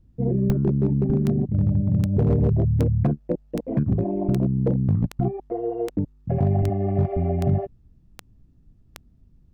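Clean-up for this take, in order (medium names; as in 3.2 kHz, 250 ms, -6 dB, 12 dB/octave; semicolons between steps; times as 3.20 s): clip repair -13 dBFS; de-click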